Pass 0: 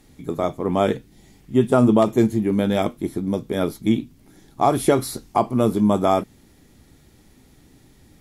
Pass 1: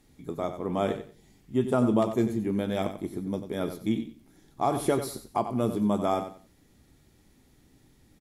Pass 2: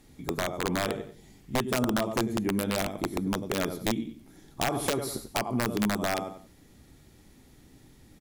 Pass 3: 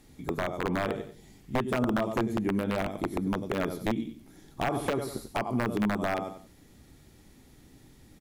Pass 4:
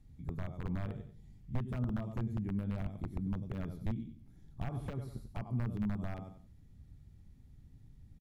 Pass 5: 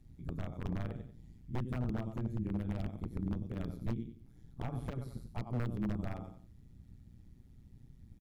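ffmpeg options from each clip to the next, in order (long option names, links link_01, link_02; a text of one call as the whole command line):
ffmpeg -i in.wav -af "aecho=1:1:92|184|276:0.316|0.0727|0.0167,volume=-8.5dB" out.wav
ffmpeg -i in.wav -af "acompressor=threshold=-30dB:ratio=4,aeval=exprs='(mod(15.8*val(0)+1,2)-1)/15.8':channel_layout=same,volume=5dB" out.wav
ffmpeg -i in.wav -filter_complex "[0:a]acrossover=split=2800[link_01][link_02];[link_02]acompressor=threshold=-43dB:ratio=4:attack=1:release=60[link_03];[link_01][link_03]amix=inputs=2:normalize=0" out.wav
ffmpeg -i in.wav -af "firequalizer=gain_entry='entry(100,0);entry(320,-20);entry(8300,-24)':delay=0.05:min_phase=1,volume=2.5dB" out.wav
ffmpeg -i in.wav -af "tremolo=f=120:d=0.788,aeval=exprs='0.0299*(abs(mod(val(0)/0.0299+3,4)-2)-1)':channel_layout=same,volume=4dB" out.wav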